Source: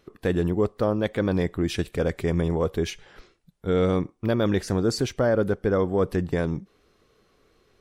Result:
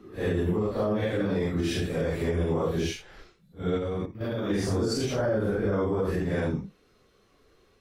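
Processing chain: phase scrambler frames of 0.2 s; limiter -18.5 dBFS, peak gain reduction 9 dB; 3.77–4.5 level quantiser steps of 10 dB

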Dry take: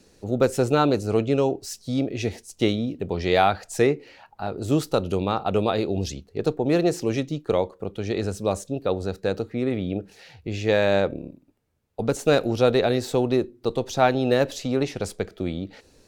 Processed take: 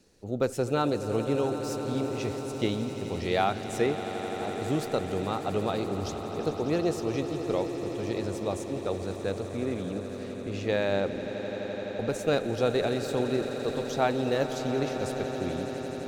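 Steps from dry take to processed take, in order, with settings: swelling echo 85 ms, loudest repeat 8, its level -15 dB; gain -7 dB

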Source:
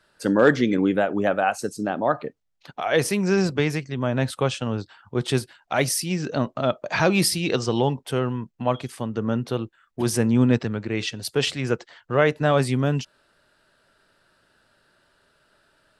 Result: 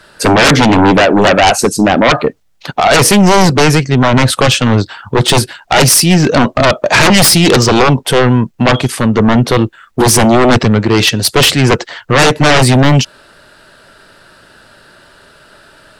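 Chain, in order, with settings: sine folder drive 16 dB, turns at -4.5 dBFS; gain +1 dB

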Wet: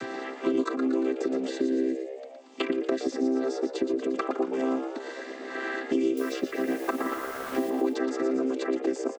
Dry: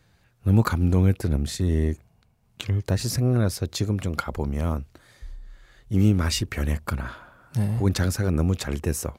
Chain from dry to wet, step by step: chord vocoder major triad, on C4; in parallel at -1 dB: compressor, threshold -34 dBFS, peak gain reduction 18.5 dB; 6.17–7.7 on the sum: requantised 8-bit, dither triangular; on a send: frequency-shifting echo 0.115 s, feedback 41%, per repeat +69 Hz, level -9.5 dB; on the sum: three-band squash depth 100%; gain -4.5 dB

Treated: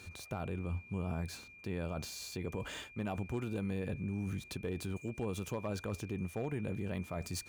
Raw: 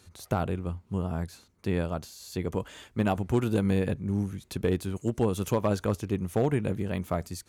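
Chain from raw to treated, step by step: median filter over 3 samples; reverse; compressor 10:1, threshold -33 dBFS, peak gain reduction 13.5 dB; reverse; limiter -33 dBFS, peak gain reduction 9 dB; whine 2400 Hz -57 dBFS; gain +3.5 dB

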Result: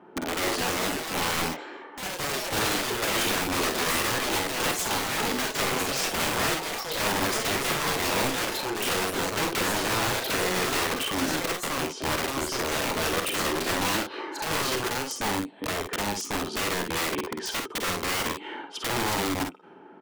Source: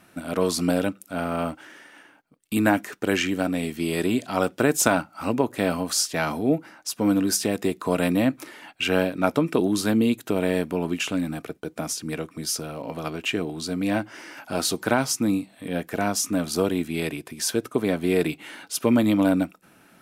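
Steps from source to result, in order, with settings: low-pass opened by the level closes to 1300 Hz, open at -17 dBFS; HPF 180 Hz 12 dB/oct; compressor 4:1, threshold -31 dBFS, peak gain reduction 14 dB; small resonant body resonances 400/870/3100 Hz, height 15 dB, ringing for 30 ms; wrapped overs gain 23.5 dB; early reflections 49 ms -6.5 dB, 60 ms -10.5 dB; echoes that change speed 0.305 s, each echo +5 st, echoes 3

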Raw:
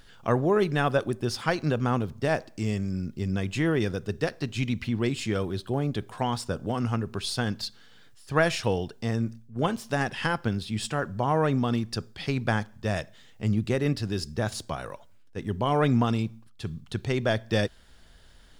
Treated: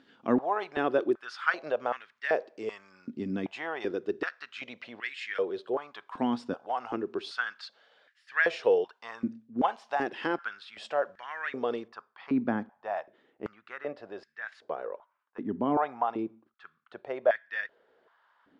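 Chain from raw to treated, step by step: LPF 3500 Hz 12 dB/oct, from 11.88 s 1600 Hz; stepped high-pass 2.6 Hz 260–1800 Hz; gain -5.5 dB

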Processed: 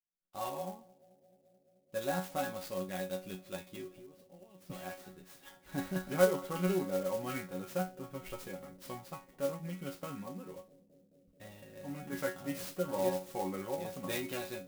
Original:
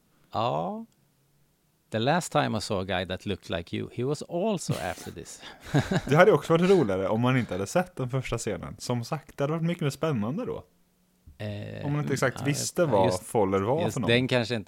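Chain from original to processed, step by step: expander -45 dBFS; 3.86–4.7 compressor 16:1, threshold -40 dBFS, peak gain reduction 18 dB; resonator bank F#3 fifth, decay 0.26 s; on a send: analogue delay 0.216 s, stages 1024, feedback 83%, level -23 dB; on the sum: clock jitter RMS 0.044 ms; gain +2.5 dB

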